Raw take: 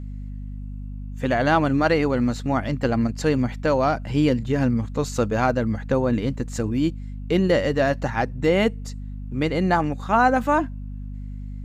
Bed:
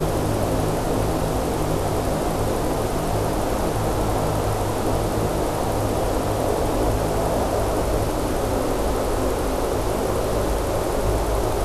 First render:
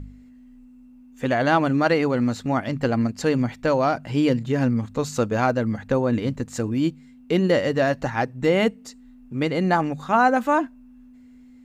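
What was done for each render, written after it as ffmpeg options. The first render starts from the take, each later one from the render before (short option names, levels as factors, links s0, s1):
-af "bandreject=f=50:t=h:w=4,bandreject=f=100:t=h:w=4,bandreject=f=150:t=h:w=4,bandreject=f=200:t=h:w=4"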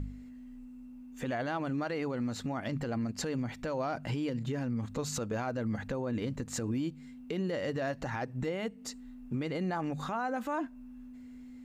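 -af "acompressor=threshold=0.0501:ratio=5,alimiter=level_in=1.19:limit=0.0631:level=0:latency=1:release=51,volume=0.841"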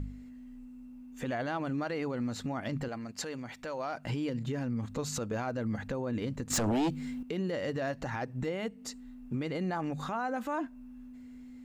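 -filter_complex "[0:a]asettb=1/sr,asplit=3[s0][s1][s2];[s0]atrim=end=2.884[s3];[s1]atrim=start=2.88:end=4.05,asetpts=PTS-STARTPTS,afade=t=in:d=0.004:c=qsin,afade=t=out:st=1.166:d=0.004:c=qsin,lowshelf=f=330:g=-11.5[s4];[s2]atrim=start=4.046[s5];[s3][s4]acrossfade=d=0.004:c1=hsin:c2=qsin[s6];[s6][s5]acrossfade=d=0.004:c1=qsin:c2=hsin,asettb=1/sr,asplit=3[s7][s8][s9];[s7]atrim=end=6.504[s10];[s8]atrim=start=6.5:end=7.23,asetpts=PTS-STARTPTS,afade=t=in:d=0.004:c=qsin,afade=t=out:st=0.726:d=0.004:c=qsin,aeval=exprs='0.0562*sin(PI/2*2.24*val(0)/0.0562)':c=same[s11];[s9]atrim=start=7.226[s12];[s10][s11]acrossfade=d=0.004:c1=hsin:c2=qsin[s13];[s13][s12]acrossfade=d=0.004:c1=qsin:c2=hsin"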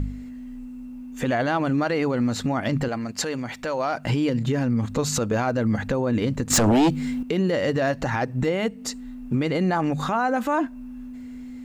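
-af "volume=3.55"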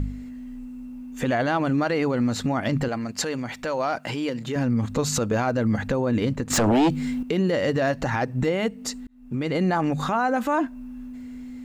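-filter_complex "[0:a]asettb=1/sr,asplit=3[s0][s1][s2];[s0]atrim=end=3.984[s3];[s1]atrim=start=3.98:end=4.56,asetpts=PTS-STARTPTS,afade=t=in:d=0.004:c=qsin,afade=t=out:st=0.576:d=0.004:c=qsin,highpass=f=430:p=1[s4];[s2]atrim=start=4.556[s5];[s3][s4]acrossfade=d=0.004:c1=hsin:c2=qsin[s6];[s6][s5]acrossfade=d=0.004:c1=qsin:c2=hsin,asettb=1/sr,asplit=3[s7][s8][s9];[s7]atrim=end=6.334[s10];[s8]atrim=start=6.33:end=6.9,asetpts=PTS-STARTPTS,afade=t=in:d=0.004:c=qsin,afade=t=out:st=0.566:d=0.004:c=qsin,bass=f=250:g=-3,treble=f=4000:g=-5[s11];[s9]atrim=start=6.896[s12];[s10][s11]acrossfade=d=0.004:c1=hsin:c2=qsin[s13];[s13][s12]acrossfade=d=0.004:c1=qsin:c2=hsin,asplit=2[s14][s15];[s14]atrim=end=9.07,asetpts=PTS-STARTPTS,afade=t=out:st=9.066:d=0.004:c=hsin[s16];[s15]atrim=start=9.07,asetpts=PTS-STARTPTS,afade=t=in:d=0.51[s17];[s16][s17]concat=n=2:v=0:a=1"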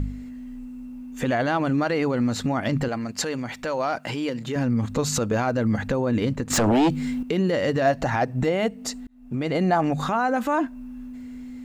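-filter_complex "[0:a]asettb=1/sr,asplit=3[s0][s1][s2];[s0]atrim=end=7.854[s3];[s1]atrim=start=7.85:end=10.01,asetpts=PTS-STARTPTS,afade=t=in:d=0.004:c=qsin,afade=t=out:st=2.156:d=0.004:c=qsin,equalizer=f=690:w=4.5:g=7.5[s4];[s2]atrim=start=10.006[s5];[s3][s4]acrossfade=d=0.004:c1=hsin:c2=qsin[s6];[s6][s5]acrossfade=d=0.004:c1=qsin:c2=hsin"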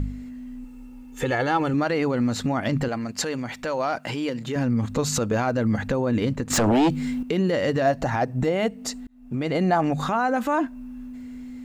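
-filter_complex "[0:a]asettb=1/sr,asplit=3[s0][s1][s2];[s0]atrim=end=0.644[s3];[s1]atrim=start=0.64:end=1.74,asetpts=PTS-STARTPTS,afade=t=in:d=0.004:c=qsin,afade=t=out:st=1.096:d=0.004:c=qsin,aecho=1:1:2.3:0.65,atrim=end_sample=48510[s4];[s2]atrim=start=1.736[s5];[s3][s4]acrossfade=d=0.004:c1=hsin:c2=qsin[s6];[s6][s5]acrossfade=d=0.004:c1=qsin:c2=hsin,asettb=1/sr,asplit=3[s7][s8][s9];[s7]atrim=end=7.824[s10];[s8]atrim=start=7.82:end=8.56,asetpts=PTS-STARTPTS,afade=t=in:d=0.004:c=qsin,afade=t=out:st=0.736:d=0.004:c=qsin,equalizer=f=2500:w=0.62:g=-3[s11];[s9]atrim=start=8.556[s12];[s10][s11]acrossfade=d=0.004:c1=hsin:c2=qsin[s13];[s13][s12]acrossfade=d=0.004:c1=qsin:c2=hsin"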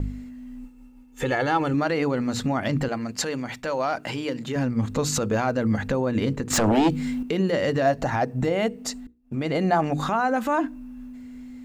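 -af "agate=range=0.0224:threshold=0.0178:ratio=3:detection=peak,bandreject=f=60:t=h:w=6,bandreject=f=120:t=h:w=6,bandreject=f=180:t=h:w=6,bandreject=f=240:t=h:w=6,bandreject=f=300:t=h:w=6,bandreject=f=360:t=h:w=6,bandreject=f=420:t=h:w=6,bandreject=f=480:t=h:w=6"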